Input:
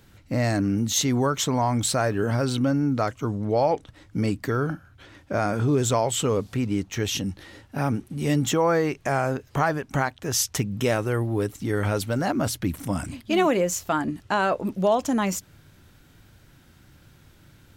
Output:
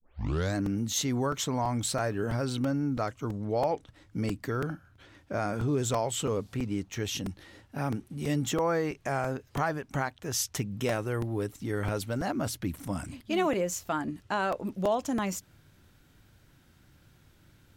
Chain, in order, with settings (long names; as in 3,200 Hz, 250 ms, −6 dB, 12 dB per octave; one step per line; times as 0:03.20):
turntable start at the beginning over 0.56 s
regular buffer underruns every 0.33 s, samples 128, repeat, from 0:00.66
level −6.5 dB